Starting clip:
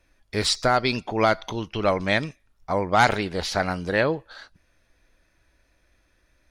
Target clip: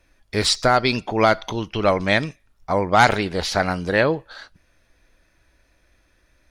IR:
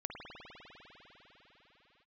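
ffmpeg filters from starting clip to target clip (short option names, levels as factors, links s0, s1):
-filter_complex "[0:a]asplit=2[s0][s1];[1:a]atrim=start_sample=2205,atrim=end_sample=3528[s2];[s1][s2]afir=irnorm=-1:irlink=0,volume=0.119[s3];[s0][s3]amix=inputs=2:normalize=0,volume=1.41"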